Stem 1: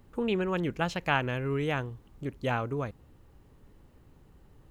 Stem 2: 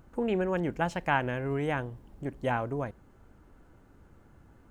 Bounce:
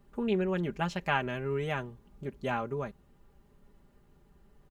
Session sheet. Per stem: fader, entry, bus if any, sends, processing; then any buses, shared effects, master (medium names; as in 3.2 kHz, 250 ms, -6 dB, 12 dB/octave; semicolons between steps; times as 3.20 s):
-6.0 dB, 0.00 s, no send, none
-15.0 dB, 0.00 s, no send, none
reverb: none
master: comb 5 ms